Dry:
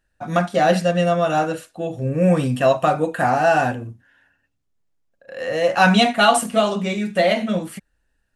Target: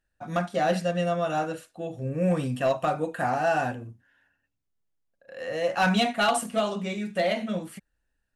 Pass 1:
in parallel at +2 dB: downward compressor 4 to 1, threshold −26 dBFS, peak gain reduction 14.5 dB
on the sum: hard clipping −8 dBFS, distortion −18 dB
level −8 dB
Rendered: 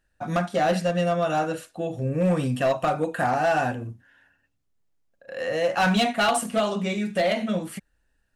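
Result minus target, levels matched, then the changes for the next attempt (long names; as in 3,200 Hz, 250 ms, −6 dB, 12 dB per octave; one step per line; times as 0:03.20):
downward compressor: peak gain reduction +14.5 dB
remove: downward compressor 4 to 1, threshold −26 dBFS, peak gain reduction 14.5 dB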